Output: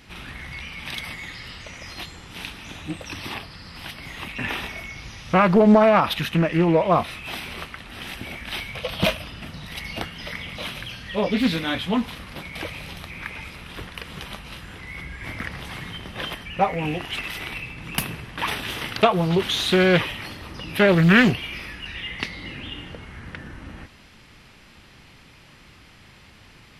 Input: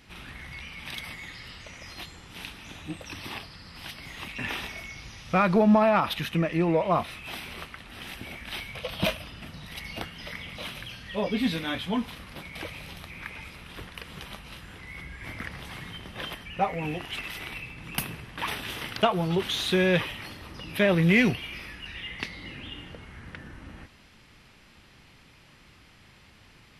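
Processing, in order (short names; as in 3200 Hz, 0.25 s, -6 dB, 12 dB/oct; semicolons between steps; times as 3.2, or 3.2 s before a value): 3.33–5.65 dynamic EQ 5600 Hz, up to -4 dB, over -48 dBFS, Q 0.81; Doppler distortion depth 0.44 ms; gain +5.5 dB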